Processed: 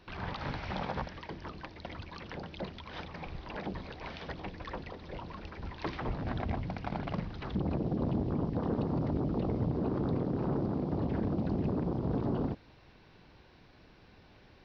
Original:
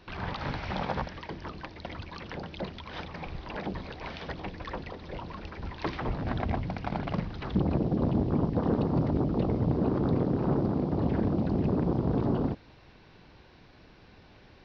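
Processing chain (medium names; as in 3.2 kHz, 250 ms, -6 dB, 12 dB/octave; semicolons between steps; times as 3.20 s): peak limiter -19.5 dBFS, peak gain reduction 4.5 dB; trim -3.5 dB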